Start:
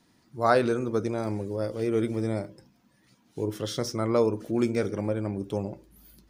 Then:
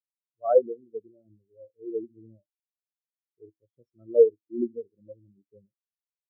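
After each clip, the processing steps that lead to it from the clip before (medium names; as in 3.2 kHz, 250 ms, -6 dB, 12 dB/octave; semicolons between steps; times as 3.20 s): spectral contrast expander 4:1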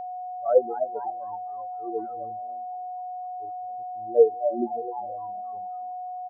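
frequency-shifting echo 257 ms, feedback 51%, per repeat +130 Hz, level -9.5 dB; level-controlled noise filter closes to 470 Hz, open at -20 dBFS; whistle 730 Hz -32 dBFS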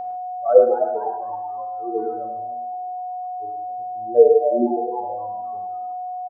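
feedback delay 106 ms, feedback 27%, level -12.5 dB; on a send at -3 dB: reverberation, pre-delay 3 ms; on the sum: trim +5 dB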